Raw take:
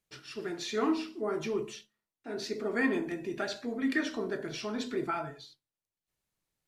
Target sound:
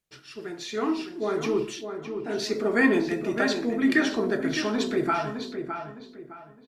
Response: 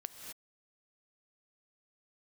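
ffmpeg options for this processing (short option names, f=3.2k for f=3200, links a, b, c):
-filter_complex "[0:a]dynaudnorm=f=230:g=11:m=8dB,asplit=2[a][b];[b]adelay=611,lowpass=f=2.8k:p=1,volume=-7.5dB,asplit=2[c][d];[d]adelay=611,lowpass=f=2.8k:p=1,volume=0.32,asplit=2[e][f];[f]adelay=611,lowpass=f=2.8k:p=1,volume=0.32,asplit=2[g][h];[h]adelay=611,lowpass=f=2.8k:p=1,volume=0.32[i];[c][e][g][i]amix=inputs=4:normalize=0[j];[a][j]amix=inputs=2:normalize=0"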